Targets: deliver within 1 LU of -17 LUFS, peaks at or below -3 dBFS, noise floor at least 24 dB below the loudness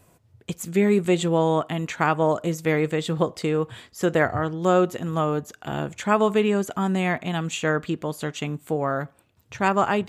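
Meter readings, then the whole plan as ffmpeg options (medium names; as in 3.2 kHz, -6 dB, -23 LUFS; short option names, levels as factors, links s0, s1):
loudness -24.0 LUFS; peak level -7.0 dBFS; loudness target -17.0 LUFS
-> -af "volume=2.24,alimiter=limit=0.708:level=0:latency=1"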